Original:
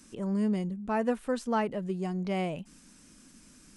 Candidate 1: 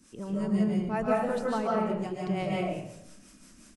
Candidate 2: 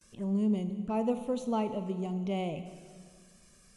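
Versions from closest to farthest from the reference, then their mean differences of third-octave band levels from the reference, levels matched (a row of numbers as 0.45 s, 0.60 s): 2, 1; 4.0 dB, 7.5 dB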